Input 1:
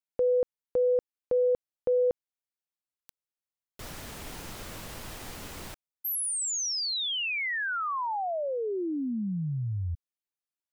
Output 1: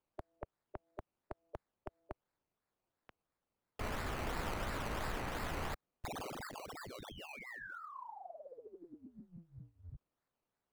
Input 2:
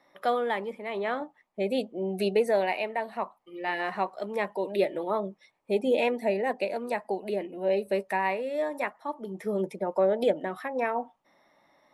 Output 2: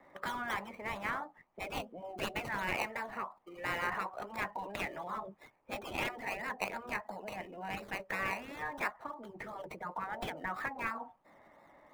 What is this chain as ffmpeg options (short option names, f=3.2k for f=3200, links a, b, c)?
-filter_complex "[0:a]afftfilt=real='re*lt(hypot(re,im),0.126)':imag='im*lt(hypot(re,im),0.126)':win_size=1024:overlap=0.75,acrossover=split=100|760|2600[a][b][c][d];[b]acompressor=threshold=-55dB:ratio=6:release=121:detection=rms[e];[d]acrusher=samples=20:mix=1:aa=0.000001:lfo=1:lforange=12:lforate=2.9[f];[a][e][c][f]amix=inputs=4:normalize=0,volume=4dB"